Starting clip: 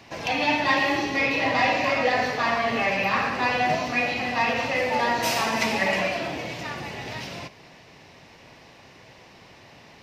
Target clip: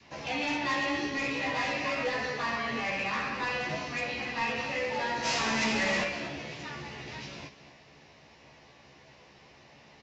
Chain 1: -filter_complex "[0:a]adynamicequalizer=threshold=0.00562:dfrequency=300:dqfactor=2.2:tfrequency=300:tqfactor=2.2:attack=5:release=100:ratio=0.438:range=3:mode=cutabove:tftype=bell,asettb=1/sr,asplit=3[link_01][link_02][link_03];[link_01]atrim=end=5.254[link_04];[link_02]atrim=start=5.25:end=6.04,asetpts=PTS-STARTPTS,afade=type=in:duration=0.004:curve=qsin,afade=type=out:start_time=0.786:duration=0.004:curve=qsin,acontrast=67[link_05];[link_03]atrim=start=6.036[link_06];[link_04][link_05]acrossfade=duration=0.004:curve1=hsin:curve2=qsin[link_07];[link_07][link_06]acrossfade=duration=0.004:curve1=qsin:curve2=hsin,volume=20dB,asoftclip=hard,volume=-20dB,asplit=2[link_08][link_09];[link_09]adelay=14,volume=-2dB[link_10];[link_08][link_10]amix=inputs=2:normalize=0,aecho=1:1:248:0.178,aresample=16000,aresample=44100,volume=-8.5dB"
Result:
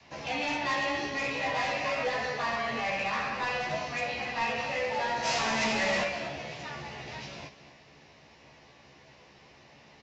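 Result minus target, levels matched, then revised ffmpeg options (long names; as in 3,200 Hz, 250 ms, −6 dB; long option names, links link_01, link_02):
250 Hz band −3.5 dB
-filter_complex "[0:a]adynamicequalizer=threshold=0.00562:dfrequency=690:dqfactor=2.2:tfrequency=690:tqfactor=2.2:attack=5:release=100:ratio=0.438:range=3:mode=cutabove:tftype=bell,asettb=1/sr,asplit=3[link_01][link_02][link_03];[link_01]atrim=end=5.254[link_04];[link_02]atrim=start=5.25:end=6.04,asetpts=PTS-STARTPTS,afade=type=in:duration=0.004:curve=qsin,afade=type=out:start_time=0.786:duration=0.004:curve=qsin,acontrast=67[link_05];[link_03]atrim=start=6.036[link_06];[link_04][link_05]acrossfade=duration=0.004:curve1=hsin:curve2=qsin[link_07];[link_07][link_06]acrossfade=duration=0.004:curve1=qsin:curve2=hsin,volume=20dB,asoftclip=hard,volume=-20dB,asplit=2[link_08][link_09];[link_09]adelay=14,volume=-2dB[link_10];[link_08][link_10]amix=inputs=2:normalize=0,aecho=1:1:248:0.178,aresample=16000,aresample=44100,volume=-8.5dB"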